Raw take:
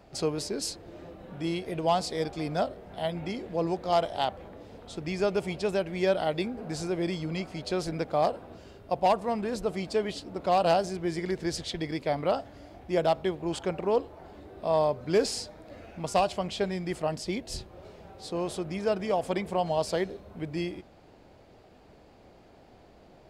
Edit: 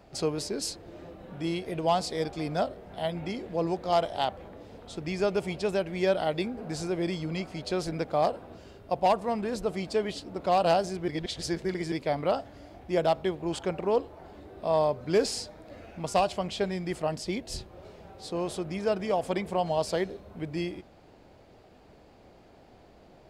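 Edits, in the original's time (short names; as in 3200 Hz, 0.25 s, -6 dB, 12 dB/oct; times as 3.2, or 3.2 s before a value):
11.08–11.92 reverse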